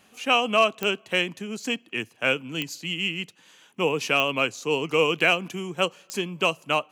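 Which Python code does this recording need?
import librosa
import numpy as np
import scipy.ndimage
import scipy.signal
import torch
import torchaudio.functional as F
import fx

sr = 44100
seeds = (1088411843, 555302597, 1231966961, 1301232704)

y = fx.fix_declip(x, sr, threshold_db=-9.0)
y = fx.fix_declick_ar(y, sr, threshold=10.0)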